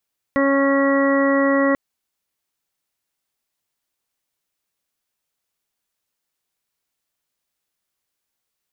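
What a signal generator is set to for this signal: steady additive tone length 1.39 s, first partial 276 Hz, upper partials -1/-16.5/-7/-12.5/-19.5/-6 dB, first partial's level -17.5 dB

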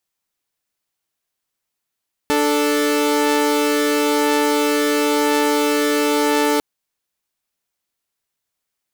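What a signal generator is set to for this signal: chord D4/A4 saw, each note -15.5 dBFS 4.30 s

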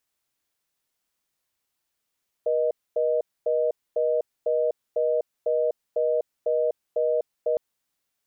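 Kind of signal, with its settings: call progress tone reorder tone, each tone -23 dBFS 5.11 s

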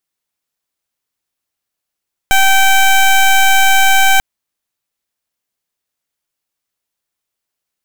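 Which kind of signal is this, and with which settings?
pulse 775 Hz, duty 16% -8.5 dBFS 1.89 s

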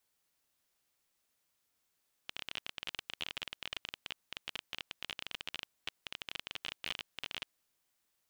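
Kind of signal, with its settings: random clicks 23/s -21.5 dBFS 5.28 s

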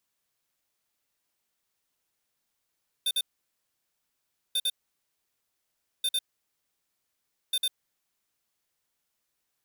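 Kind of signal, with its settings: beep pattern square 3590 Hz, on 0.05 s, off 0.05 s, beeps 2, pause 1.34 s, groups 4, -26.5 dBFS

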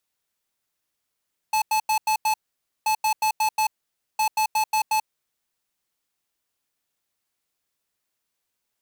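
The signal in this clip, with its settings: beep pattern square 867 Hz, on 0.09 s, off 0.09 s, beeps 5, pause 0.52 s, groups 3, -21 dBFS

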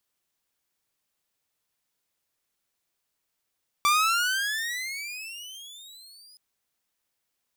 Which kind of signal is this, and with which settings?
gliding synth tone saw, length 2.52 s, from 1160 Hz, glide +25.5 st, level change -31.5 dB, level -15.5 dB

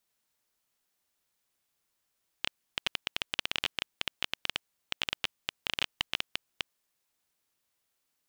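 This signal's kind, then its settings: random clicks 11/s -10.5 dBFS 4.65 s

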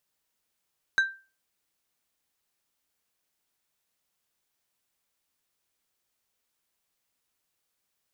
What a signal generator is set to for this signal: glass hit plate, lowest mode 1570 Hz, decay 0.33 s, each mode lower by 11.5 dB, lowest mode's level -16 dB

